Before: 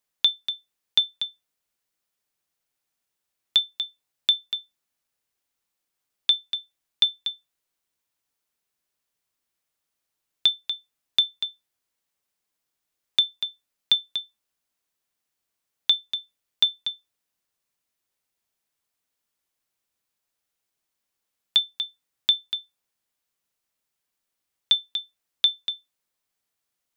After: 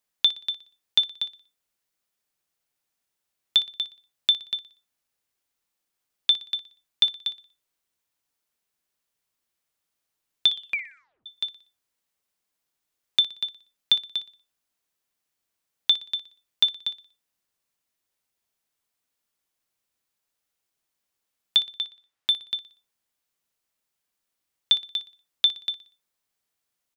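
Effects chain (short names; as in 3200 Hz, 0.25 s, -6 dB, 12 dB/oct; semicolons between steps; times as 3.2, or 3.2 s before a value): 10.49 tape stop 0.77 s; 21.78–22.51 overdrive pedal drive 7 dB, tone 2700 Hz, clips at -8 dBFS; feedback echo 60 ms, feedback 39%, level -15 dB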